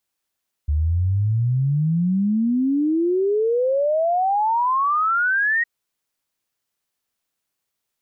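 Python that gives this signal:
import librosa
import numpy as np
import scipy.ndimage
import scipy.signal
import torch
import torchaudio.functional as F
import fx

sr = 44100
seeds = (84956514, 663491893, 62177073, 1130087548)

y = fx.ess(sr, length_s=4.96, from_hz=72.0, to_hz=1900.0, level_db=-16.5)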